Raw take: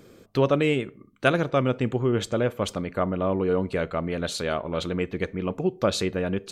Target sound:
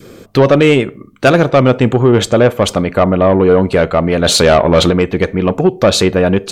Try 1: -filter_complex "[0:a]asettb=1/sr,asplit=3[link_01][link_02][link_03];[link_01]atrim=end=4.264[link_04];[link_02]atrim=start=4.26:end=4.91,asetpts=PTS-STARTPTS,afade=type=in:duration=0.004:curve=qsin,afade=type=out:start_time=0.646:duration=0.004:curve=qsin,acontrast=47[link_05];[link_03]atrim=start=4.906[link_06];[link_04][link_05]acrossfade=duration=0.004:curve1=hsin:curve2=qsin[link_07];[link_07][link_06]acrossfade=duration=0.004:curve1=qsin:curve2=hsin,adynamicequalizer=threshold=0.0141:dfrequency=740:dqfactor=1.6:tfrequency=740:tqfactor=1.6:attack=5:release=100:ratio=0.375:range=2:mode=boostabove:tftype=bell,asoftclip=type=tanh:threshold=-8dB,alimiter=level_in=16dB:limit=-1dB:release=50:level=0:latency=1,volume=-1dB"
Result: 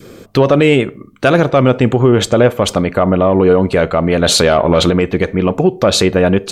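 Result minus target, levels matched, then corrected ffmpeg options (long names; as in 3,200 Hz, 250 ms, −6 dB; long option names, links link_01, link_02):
soft clipping: distortion −10 dB
-filter_complex "[0:a]asettb=1/sr,asplit=3[link_01][link_02][link_03];[link_01]atrim=end=4.264[link_04];[link_02]atrim=start=4.26:end=4.91,asetpts=PTS-STARTPTS,afade=type=in:duration=0.004:curve=qsin,afade=type=out:start_time=0.646:duration=0.004:curve=qsin,acontrast=47[link_05];[link_03]atrim=start=4.906[link_06];[link_04][link_05]acrossfade=duration=0.004:curve1=hsin:curve2=qsin[link_07];[link_07][link_06]acrossfade=duration=0.004:curve1=qsin:curve2=hsin,adynamicequalizer=threshold=0.0141:dfrequency=740:dqfactor=1.6:tfrequency=740:tqfactor=1.6:attack=5:release=100:ratio=0.375:range=2:mode=boostabove:tftype=bell,asoftclip=type=tanh:threshold=-15.5dB,alimiter=level_in=16dB:limit=-1dB:release=50:level=0:latency=1,volume=-1dB"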